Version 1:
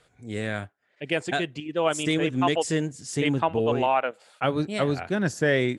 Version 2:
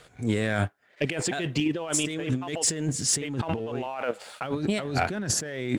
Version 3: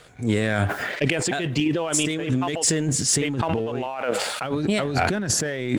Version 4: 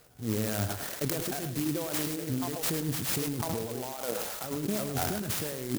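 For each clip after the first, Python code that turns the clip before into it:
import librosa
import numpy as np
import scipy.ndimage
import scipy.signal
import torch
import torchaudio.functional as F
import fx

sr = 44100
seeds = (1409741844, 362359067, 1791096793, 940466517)

y1 = fx.over_compress(x, sr, threshold_db=-34.0, ratio=-1.0)
y1 = fx.leveller(y1, sr, passes=1)
y1 = F.gain(torch.from_numpy(y1), 1.5).numpy()
y2 = fx.sustainer(y1, sr, db_per_s=35.0)
y2 = F.gain(torch.from_numpy(y2), 3.0).numpy()
y3 = y2 + 10.0 ** (-9.0 / 20.0) * np.pad(y2, (int(105 * sr / 1000.0), 0))[:len(y2)]
y3 = fx.clock_jitter(y3, sr, seeds[0], jitter_ms=0.13)
y3 = F.gain(torch.from_numpy(y3), -9.0).numpy()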